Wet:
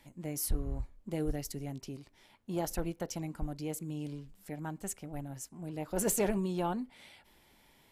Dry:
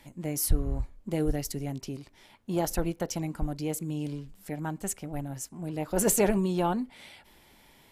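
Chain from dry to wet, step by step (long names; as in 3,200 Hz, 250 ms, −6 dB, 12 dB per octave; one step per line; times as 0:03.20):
hard clipping −16 dBFS, distortion −22 dB
level −6 dB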